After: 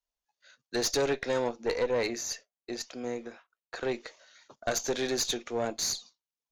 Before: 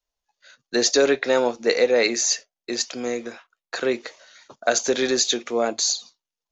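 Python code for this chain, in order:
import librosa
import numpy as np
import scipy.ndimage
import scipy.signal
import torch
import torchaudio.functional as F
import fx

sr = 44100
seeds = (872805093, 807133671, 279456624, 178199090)

y = fx.high_shelf(x, sr, hz=2200.0, db=-6.5, at=(1.49, 3.83))
y = fx.tube_stage(y, sr, drive_db=15.0, bias=0.5)
y = y * librosa.db_to_amplitude(-6.0)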